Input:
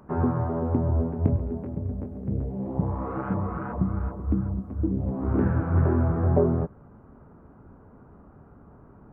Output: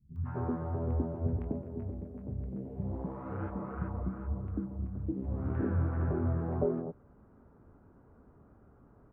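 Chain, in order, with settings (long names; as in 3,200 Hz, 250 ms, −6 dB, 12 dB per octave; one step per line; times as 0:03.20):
three-band delay without the direct sound lows, highs, mids 160/250 ms, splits 160/940 Hz
level −7.5 dB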